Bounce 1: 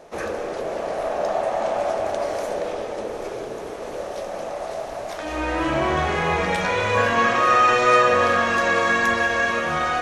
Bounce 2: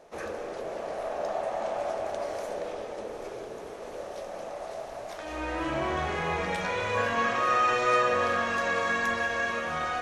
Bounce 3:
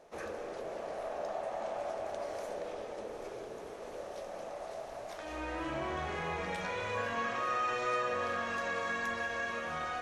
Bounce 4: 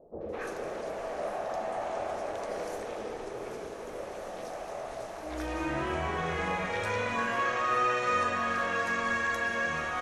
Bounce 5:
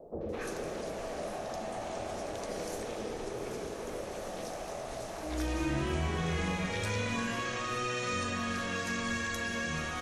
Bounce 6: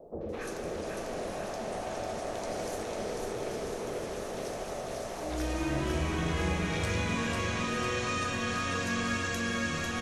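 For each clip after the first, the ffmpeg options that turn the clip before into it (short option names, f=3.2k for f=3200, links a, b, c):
-af "bandreject=f=50:t=h:w=6,bandreject=f=100:t=h:w=6,bandreject=f=150:t=h:w=6,bandreject=f=200:t=h:w=6,bandreject=f=250:t=h:w=6,bandreject=f=300:t=h:w=6,bandreject=f=350:t=h:w=6,volume=-8dB"
-af "acompressor=threshold=-33dB:ratio=1.5,volume=-4.5dB"
-filter_complex "[0:a]acrossover=split=650|4000[a][b][c];[b]adelay=210[d];[c]adelay=290[e];[a][d][e]amix=inputs=3:normalize=0,volume=6.5dB"
-filter_complex "[0:a]acrossover=split=310|3000[a][b][c];[b]acompressor=threshold=-46dB:ratio=4[d];[a][d][c]amix=inputs=3:normalize=0,volume=5.5dB"
-af "aecho=1:1:497|994|1491|1988|2485|2982|3479|3976:0.668|0.394|0.233|0.137|0.081|0.0478|0.0282|0.0166"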